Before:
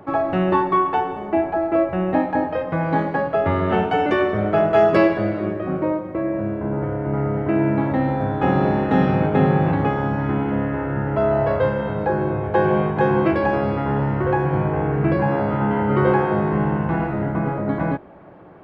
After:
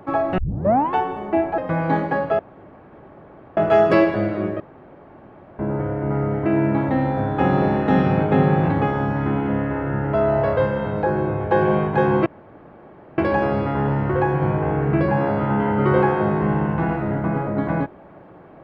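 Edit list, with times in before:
0.38 s: tape start 0.55 s
1.58–2.61 s: delete
3.42–4.60 s: room tone
5.63–6.62 s: room tone
13.29 s: insert room tone 0.92 s

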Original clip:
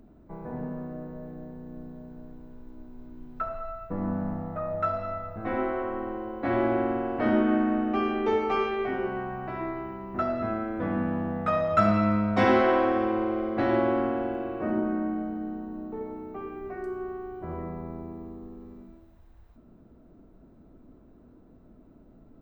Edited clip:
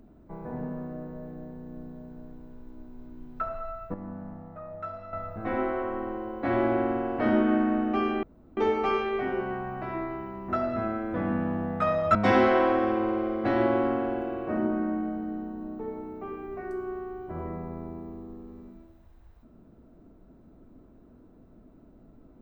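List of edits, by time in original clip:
3.94–5.13 s: gain -9.5 dB
8.23 s: insert room tone 0.34 s
11.81–12.28 s: delete

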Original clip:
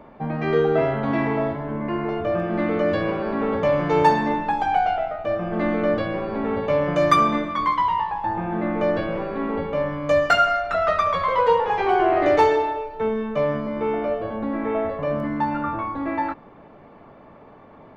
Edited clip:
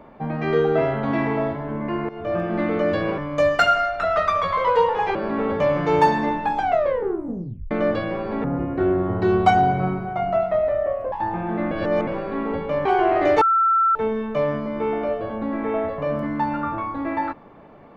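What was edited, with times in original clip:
2.09–2.36 s: fade in, from -16.5 dB
4.65 s: tape stop 1.09 s
6.47–8.16 s: speed 63%
8.75–9.11 s: reverse
9.89–11.86 s: move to 3.18 s
12.42–12.96 s: bleep 1.34 kHz -14.5 dBFS

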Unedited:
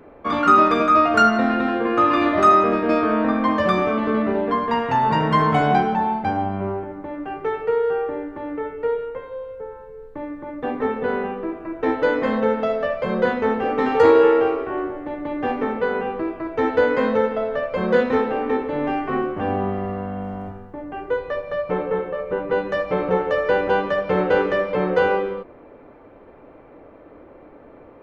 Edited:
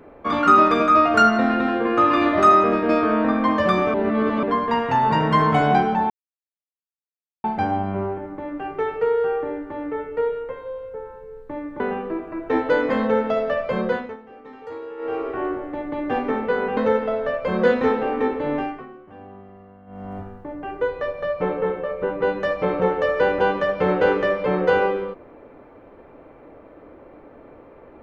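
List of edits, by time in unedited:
3.94–4.43 s: reverse
6.10 s: insert silence 1.34 s
10.46–11.13 s: delete
13.10–14.70 s: dip -21.5 dB, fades 0.40 s
16.10–17.06 s: delete
18.82–20.48 s: dip -19 dB, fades 0.33 s linear

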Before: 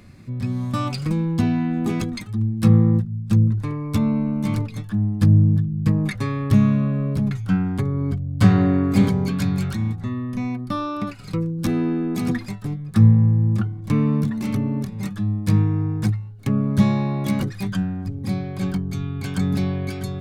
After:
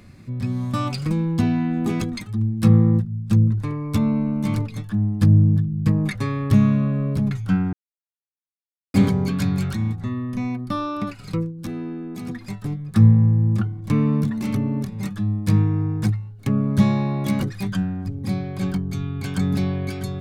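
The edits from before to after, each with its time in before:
7.73–8.94 s: mute
11.40–12.53 s: dip -8.5 dB, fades 0.13 s

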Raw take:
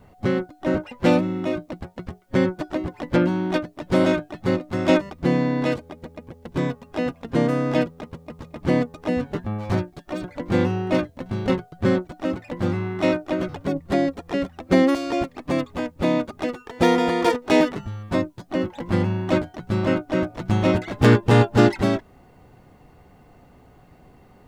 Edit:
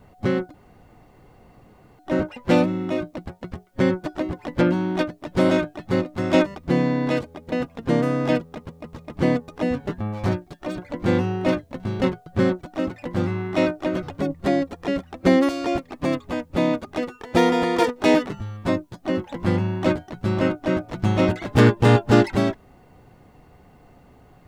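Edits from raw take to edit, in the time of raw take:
0.54 s: insert room tone 1.45 s
6.07–6.98 s: delete

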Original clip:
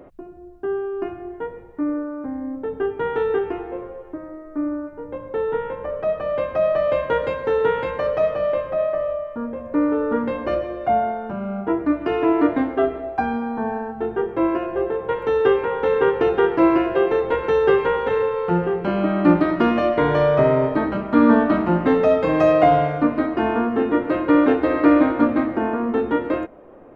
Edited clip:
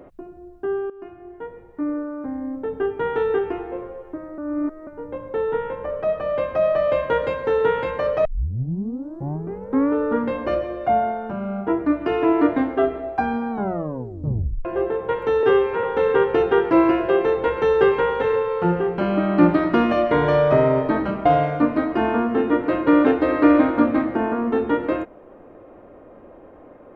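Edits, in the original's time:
0.90–2.58 s: fade in equal-power, from -15.5 dB
4.38–4.87 s: reverse
8.25 s: tape start 1.67 s
13.51 s: tape stop 1.14 s
15.43–15.70 s: stretch 1.5×
21.12–22.67 s: delete

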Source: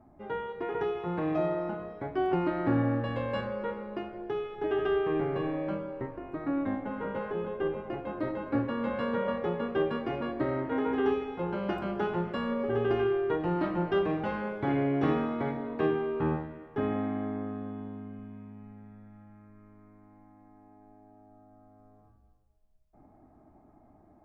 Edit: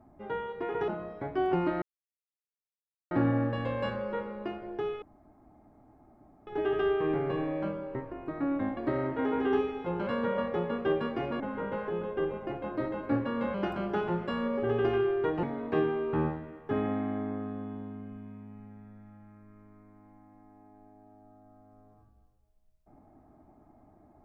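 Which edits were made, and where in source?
0.88–1.68 s: delete
2.62 s: insert silence 1.29 s
4.53 s: insert room tone 1.45 s
6.83–8.97 s: swap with 10.30–11.60 s
13.49–15.50 s: delete

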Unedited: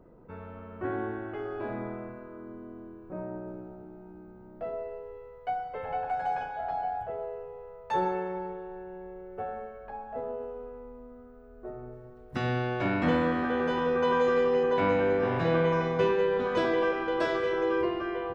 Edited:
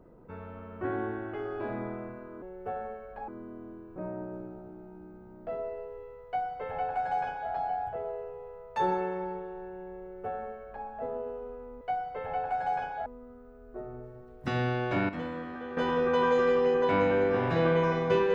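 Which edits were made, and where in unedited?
5.40–6.65 s: copy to 10.95 s
9.14–10.00 s: copy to 2.42 s
12.98–13.66 s: gain -11 dB

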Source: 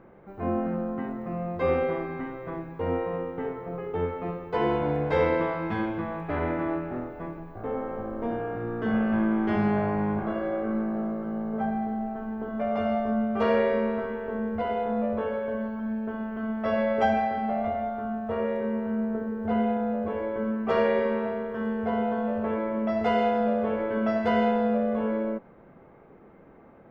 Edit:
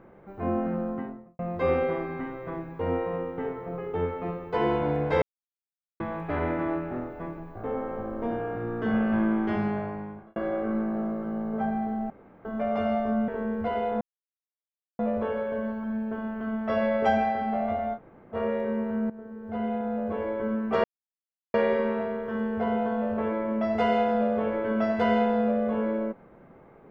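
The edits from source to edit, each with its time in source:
0.87–1.39 s: studio fade out
5.22–6.00 s: mute
9.30–10.36 s: fade out
12.10–12.45 s: room tone
13.28–14.22 s: delete
14.95 s: insert silence 0.98 s
17.92–18.30 s: room tone, crossfade 0.06 s
19.06–20.15 s: fade in, from -16 dB
20.80 s: insert silence 0.70 s

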